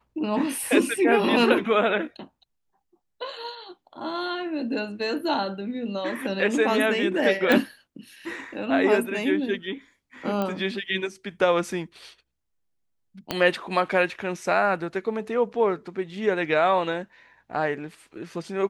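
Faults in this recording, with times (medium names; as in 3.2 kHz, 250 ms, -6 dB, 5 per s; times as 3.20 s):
7.52 s: pop
10.42 s: pop -15 dBFS
13.31 s: pop -10 dBFS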